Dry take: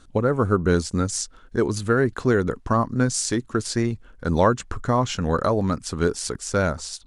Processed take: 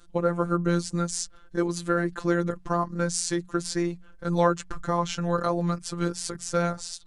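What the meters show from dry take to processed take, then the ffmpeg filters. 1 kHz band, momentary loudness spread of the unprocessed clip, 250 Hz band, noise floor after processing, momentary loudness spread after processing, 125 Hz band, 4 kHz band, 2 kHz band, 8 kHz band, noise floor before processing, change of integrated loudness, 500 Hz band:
-3.5 dB, 6 LU, -3.5 dB, -50 dBFS, 5 LU, -5.5 dB, -3.5 dB, -5.0 dB, -3.5 dB, -50 dBFS, -4.5 dB, -5.0 dB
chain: -af "afftfilt=real='hypot(re,im)*cos(PI*b)':imag='0':win_size=1024:overlap=0.75,bandreject=f=45.02:t=h:w=4,bandreject=f=90.04:t=h:w=4,bandreject=f=135.06:t=h:w=4,bandreject=f=180.08:t=h:w=4"

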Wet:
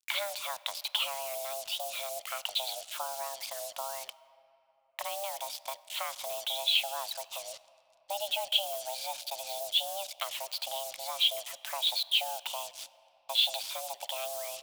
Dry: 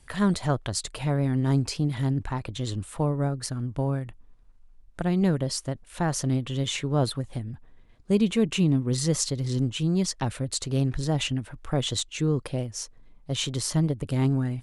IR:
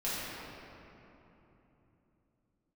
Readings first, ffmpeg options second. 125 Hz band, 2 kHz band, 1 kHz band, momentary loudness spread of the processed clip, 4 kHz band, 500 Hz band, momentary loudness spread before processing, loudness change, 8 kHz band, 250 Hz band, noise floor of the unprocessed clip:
under -40 dB, -1.0 dB, -1.0 dB, 11 LU, +4.5 dB, -8.5 dB, 9 LU, -5.5 dB, -5.5 dB, under -40 dB, -53 dBFS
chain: -filter_complex "[0:a]acompressor=threshold=-32dB:ratio=8,highpass=f=220:t=q:w=0.5412,highpass=f=220:t=q:w=1.307,lowpass=f=3.1k:t=q:w=0.5176,lowpass=f=3.1k:t=q:w=0.7071,lowpass=f=3.1k:t=q:w=1.932,afreqshift=400,acrusher=bits=8:mix=0:aa=0.5,asplit=2[a][b];[1:a]atrim=start_sample=2205[c];[b][c]afir=irnorm=-1:irlink=0,volume=-24dB[d];[a][d]amix=inputs=2:normalize=0,aexciter=amount=7.1:drive=6.3:freq=2.7k"

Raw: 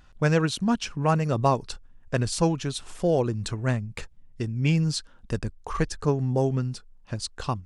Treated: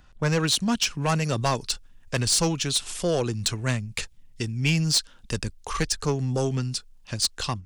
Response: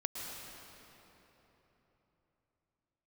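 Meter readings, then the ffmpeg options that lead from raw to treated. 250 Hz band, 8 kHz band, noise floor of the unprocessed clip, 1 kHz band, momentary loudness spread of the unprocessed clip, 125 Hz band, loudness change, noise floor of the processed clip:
-1.5 dB, +10.5 dB, -52 dBFS, -2.0 dB, 11 LU, -1.0 dB, +1.0 dB, -52 dBFS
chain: -filter_complex "[0:a]acrossover=split=260|2400[a][b][c];[c]dynaudnorm=f=240:g=3:m=13dB[d];[a][b][d]amix=inputs=3:normalize=0,asoftclip=type=tanh:threshold=-15dB"

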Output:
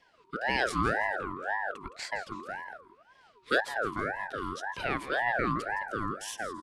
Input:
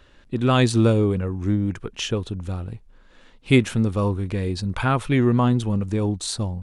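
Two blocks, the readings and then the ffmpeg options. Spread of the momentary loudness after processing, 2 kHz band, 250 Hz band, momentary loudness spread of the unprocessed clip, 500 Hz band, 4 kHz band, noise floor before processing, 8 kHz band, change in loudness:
11 LU, +2.0 dB, -17.5 dB, 12 LU, -10.0 dB, -9.5 dB, -53 dBFS, -11.0 dB, -10.0 dB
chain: -filter_complex "[0:a]asplit=4[a][b][c][d];[b]adelay=165,afreqshift=-50,volume=-13.5dB[e];[c]adelay=330,afreqshift=-100,volume=-22.9dB[f];[d]adelay=495,afreqshift=-150,volume=-32.2dB[g];[a][e][f][g]amix=inputs=4:normalize=0,afreqshift=260,aeval=exprs='val(0)*sin(2*PI*1000*n/s+1000*0.35/1.9*sin(2*PI*1.9*n/s))':c=same,volume=-8.5dB"

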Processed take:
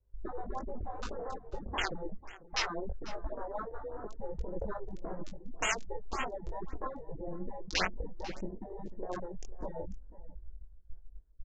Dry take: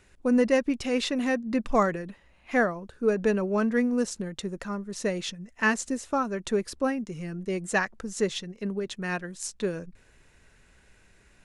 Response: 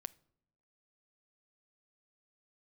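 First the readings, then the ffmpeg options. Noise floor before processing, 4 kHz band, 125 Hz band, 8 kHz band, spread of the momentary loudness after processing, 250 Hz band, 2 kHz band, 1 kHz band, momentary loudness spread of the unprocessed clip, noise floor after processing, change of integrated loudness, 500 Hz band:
-60 dBFS, -3.5 dB, -8.5 dB, -7.5 dB, 16 LU, -18.0 dB, -9.5 dB, -7.5 dB, 10 LU, -55 dBFS, -11.5 dB, -13.5 dB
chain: -filter_complex "[0:a]acrossover=split=310|1000[a][b][c];[c]acrusher=bits=3:mix=0:aa=0.000001[d];[a][b][d]amix=inputs=3:normalize=0,afwtdn=0.0126,flanger=delay=1.8:depth=4.9:regen=33:speed=0.22:shape=triangular,asplit=2[e][f];[f]acompressor=threshold=-39dB:ratio=6,volume=-0.5dB[g];[e][g]amix=inputs=2:normalize=0,agate=range=-12dB:threshold=-56dB:ratio=16:detection=peak,flanger=delay=19.5:depth=2.5:speed=2.7,afftfilt=real='re*lt(hypot(re,im),0.0708)':imag='im*lt(hypot(re,im),0.0708)':win_size=1024:overlap=0.75,lowshelf=f=100:t=q:w=1.5:g=9.5,aecho=1:1:494:0.133,acontrast=42,aresample=16000,aresample=44100,afftfilt=real='re*(1-between(b*sr/1024,210*pow(4800/210,0.5+0.5*sin(2*PI*1.8*pts/sr))/1.41,210*pow(4800/210,0.5+0.5*sin(2*PI*1.8*pts/sr))*1.41))':imag='im*(1-between(b*sr/1024,210*pow(4800/210,0.5+0.5*sin(2*PI*1.8*pts/sr))/1.41,210*pow(4800/210,0.5+0.5*sin(2*PI*1.8*pts/sr))*1.41))':win_size=1024:overlap=0.75,volume=2.5dB"

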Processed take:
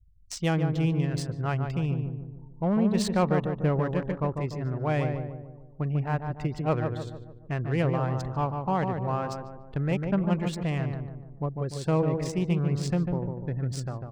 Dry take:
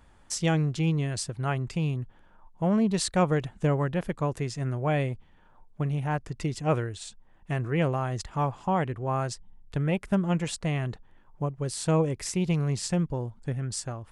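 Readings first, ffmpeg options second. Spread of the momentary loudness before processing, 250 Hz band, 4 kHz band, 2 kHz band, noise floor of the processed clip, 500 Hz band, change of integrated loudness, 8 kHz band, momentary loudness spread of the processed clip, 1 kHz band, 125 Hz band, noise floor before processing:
9 LU, +0.5 dB, -4.0 dB, -1.5 dB, -47 dBFS, +0.5 dB, 0.0 dB, -8.0 dB, 10 LU, 0.0 dB, +0.5 dB, -57 dBFS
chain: -filter_complex "[0:a]afftfilt=real='re*gte(hypot(re,im),0.00562)':imag='im*gte(hypot(re,im),0.00562)':win_size=1024:overlap=0.75,asplit=2[a][b];[b]adelay=147,lowpass=f=1.3k:p=1,volume=-4.5dB,asplit=2[c][d];[d]adelay=147,lowpass=f=1.3k:p=1,volume=0.51,asplit=2[e][f];[f]adelay=147,lowpass=f=1.3k:p=1,volume=0.51,asplit=2[g][h];[h]adelay=147,lowpass=f=1.3k:p=1,volume=0.51,asplit=2[i][j];[j]adelay=147,lowpass=f=1.3k:p=1,volume=0.51,asplit=2[k][l];[l]adelay=147,lowpass=f=1.3k:p=1,volume=0.51,asplit=2[m][n];[n]adelay=147,lowpass=f=1.3k:p=1,volume=0.51[o];[a][c][e][g][i][k][m][o]amix=inputs=8:normalize=0,adynamicsmooth=sensitivity=5.5:basefreq=2.7k,volume=-1dB"

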